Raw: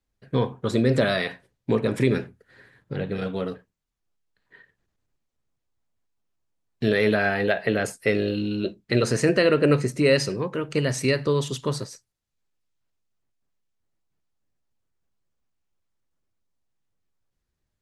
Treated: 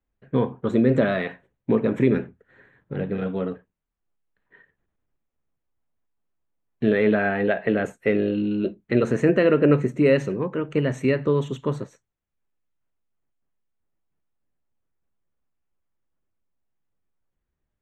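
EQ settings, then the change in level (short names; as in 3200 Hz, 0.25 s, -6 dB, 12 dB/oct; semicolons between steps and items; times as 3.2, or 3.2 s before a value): dynamic EQ 240 Hz, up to +4 dB, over -33 dBFS, Q 1; running mean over 9 samples; bell 110 Hz -6 dB 0.36 oct; 0.0 dB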